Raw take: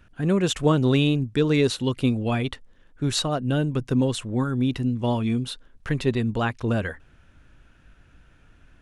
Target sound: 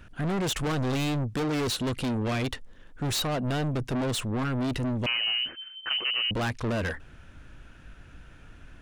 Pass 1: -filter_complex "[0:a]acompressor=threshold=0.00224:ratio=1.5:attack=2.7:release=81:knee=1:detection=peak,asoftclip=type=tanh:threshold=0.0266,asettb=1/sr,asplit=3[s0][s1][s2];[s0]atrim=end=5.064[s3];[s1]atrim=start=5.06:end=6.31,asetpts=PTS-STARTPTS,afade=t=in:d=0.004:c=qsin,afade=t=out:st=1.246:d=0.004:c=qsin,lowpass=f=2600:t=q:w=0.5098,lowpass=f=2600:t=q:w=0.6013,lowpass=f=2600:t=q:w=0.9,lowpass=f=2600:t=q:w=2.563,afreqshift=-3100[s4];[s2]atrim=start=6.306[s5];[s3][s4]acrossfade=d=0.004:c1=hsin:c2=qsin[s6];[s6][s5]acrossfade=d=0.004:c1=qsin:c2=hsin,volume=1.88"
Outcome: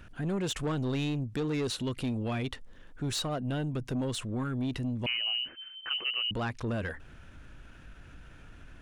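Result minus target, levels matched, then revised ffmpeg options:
compression: peak gain reduction +14 dB
-filter_complex "[0:a]asoftclip=type=tanh:threshold=0.0266,asettb=1/sr,asplit=3[s0][s1][s2];[s0]atrim=end=5.064[s3];[s1]atrim=start=5.06:end=6.31,asetpts=PTS-STARTPTS,afade=t=in:d=0.004:c=qsin,afade=t=out:st=1.246:d=0.004:c=qsin,lowpass=f=2600:t=q:w=0.5098,lowpass=f=2600:t=q:w=0.6013,lowpass=f=2600:t=q:w=0.9,lowpass=f=2600:t=q:w=2.563,afreqshift=-3100[s4];[s2]atrim=start=6.306[s5];[s3][s4]acrossfade=d=0.004:c1=hsin:c2=qsin[s6];[s6][s5]acrossfade=d=0.004:c1=qsin:c2=hsin,volume=1.88"

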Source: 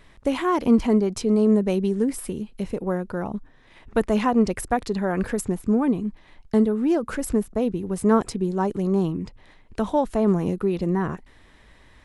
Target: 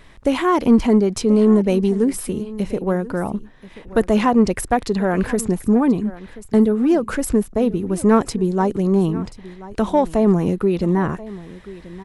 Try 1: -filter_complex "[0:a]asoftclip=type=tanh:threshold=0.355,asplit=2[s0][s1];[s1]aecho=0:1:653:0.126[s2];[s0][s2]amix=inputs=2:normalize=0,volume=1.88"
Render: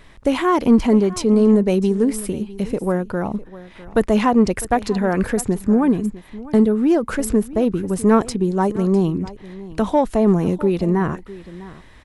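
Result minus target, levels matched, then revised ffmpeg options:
echo 380 ms early
-filter_complex "[0:a]asoftclip=type=tanh:threshold=0.355,asplit=2[s0][s1];[s1]aecho=0:1:1033:0.126[s2];[s0][s2]amix=inputs=2:normalize=0,volume=1.88"

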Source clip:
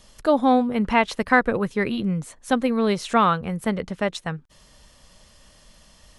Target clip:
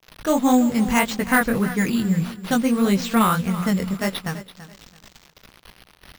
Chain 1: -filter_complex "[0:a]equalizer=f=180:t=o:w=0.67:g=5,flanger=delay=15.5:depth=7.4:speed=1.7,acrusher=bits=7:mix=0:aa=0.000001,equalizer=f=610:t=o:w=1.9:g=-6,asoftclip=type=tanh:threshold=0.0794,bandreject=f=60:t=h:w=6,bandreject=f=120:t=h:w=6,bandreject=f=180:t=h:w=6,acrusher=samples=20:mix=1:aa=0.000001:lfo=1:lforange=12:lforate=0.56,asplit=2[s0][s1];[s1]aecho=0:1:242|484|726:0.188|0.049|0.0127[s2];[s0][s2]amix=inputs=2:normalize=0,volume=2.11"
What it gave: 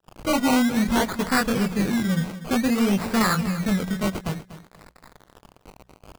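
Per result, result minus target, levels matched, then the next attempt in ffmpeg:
decimation with a swept rate: distortion +11 dB; saturation: distortion +10 dB; echo 91 ms early
-filter_complex "[0:a]equalizer=f=180:t=o:w=0.67:g=5,flanger=delay=15.5:depth=7.4:speed=1.7,acrusher=bits=7:mix=0:aa=0.000001,equalizer=f=610:t=o:w=1.9:g=-6,asoftclip=type=tanh:threshold=0.0794,bandreject=f=60:t=h:w=6,bandreject=f=120:t=h:w=6,bandreject=f=180:t=h:w=6,acrusher=samples=5:mix=1:aa=0.000001:lfo=1:lforange=3:lforate=0.56,asplit=2[s0][s1];[s1]aecho=0:1:242|484|726:0.188|0.049|0.0127[s2];[s0][s2]amix=inputs=2:normalize=0,volume=2.11"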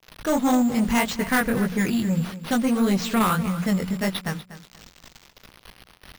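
saturation: distortion +10 dB; echo 91 ms early
-filter_complex "[0:a]equalizer=f=180:t=o:w=0.67:g=5,flanger=delay=15.5:depth=7.4:speed=1.7,acrusher=bits=7:mix=0:aa=0.000001,equalizer=f=610:t=o:w=1.9:g=-6,asoftclip=type=tanh:threshold=0.2,bandreject=f=60:t=h:w=6,bandreject=f=120:t=h:w=6,bandreject=f=180:t=h:w=6,acrusher=samples=5:mix=1:aa=0.000001:lfo=1:lforange=3:lforate=0.56,asplit=2[s0][s1];[s1]aecho=0:1:242|484|726:0.188|0.049|0.0127[s2];[s0][s2]amix=inputs=2:normalize=0,volume=2.11"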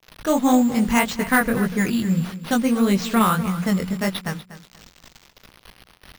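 echo 91 ms early
-filter_complex "[0:a]equalizer=f=180:t=o:w=0.67:g=5,flanger=delay=15.5:depth=7.4:speed=1.7,acrusher=bits=7:mix=0:aa=0.000001,equalizer=f=610:t=o:w=1.9:g=-6,asoftclip=type=tanh:threshold=0.2,bandreject=f=60:t=h:w=6,bandreject=f=120:t=h:w=6,bandreject=f=180:t=h:w=6,acrusher=samples=5:mix=1:aa=0.000001:lfo=1:lforange=3:lforate=0.56,asplit=2[s0][s1];[s1]aecho=0:1:333|666|999:0.188|0.049|0.0127[s2];[s0][s2]amix=inputs=2:normalize=0,volume=2.11"

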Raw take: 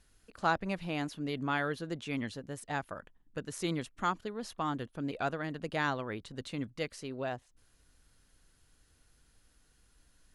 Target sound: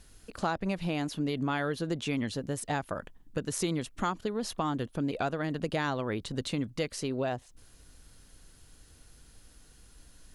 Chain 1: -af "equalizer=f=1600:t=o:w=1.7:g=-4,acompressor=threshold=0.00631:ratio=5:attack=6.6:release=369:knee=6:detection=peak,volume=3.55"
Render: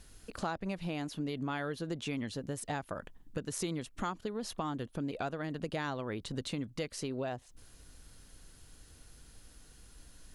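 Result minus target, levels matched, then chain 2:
compression: peak gain reduction +5.5 dB
-af "equalizer=f=1600:t=o:w=1.7:g=-4,acompressor=threshold=0.0141:ratio=5:attack=6.6:release=369:knee=6:detection=peak,volume=3.55"

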